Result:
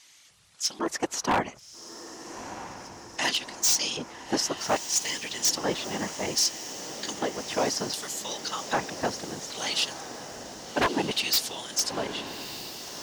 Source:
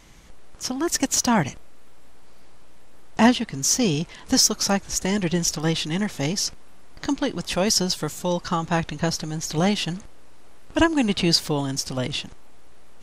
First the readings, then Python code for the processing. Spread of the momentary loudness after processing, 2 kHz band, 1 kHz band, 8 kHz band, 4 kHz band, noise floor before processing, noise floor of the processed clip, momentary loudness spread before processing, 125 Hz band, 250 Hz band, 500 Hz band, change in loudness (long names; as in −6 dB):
15 LU, −3.0 dB, −3.0 dB, −3.5 dB, −2.5 dB, −43 dBFS, −53 dBFS, 10 LU, −15.5 dB, −12.5 dB, −5.0 dB, −5.0 dB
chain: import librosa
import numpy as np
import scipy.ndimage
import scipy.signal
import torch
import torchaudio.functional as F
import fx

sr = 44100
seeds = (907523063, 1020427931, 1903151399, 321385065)

p1 = fx.high_shelf(x, sr, hz=7100.0, db=11.0)
p2 = fx.whisperise(p1, sr, seeds[0])
p3 = fx.filter_lfo_bandpass(p2, sr, shape='square', hz=0.63, low_hz=870.0, high_hz=4200.0, q=0.81)
p4 = 10.0 ** (-16.5 / 20.0) * (np.abs((p3 / 10.0 ** (-16.5 / 20.0) + 3.0) % 4.0 - 2.0) - 1.0)
y = p4 + fx.echo_diffused(p4, sr, ms=1269, feedback_pct=70, wet_db=-11.5, dry=0)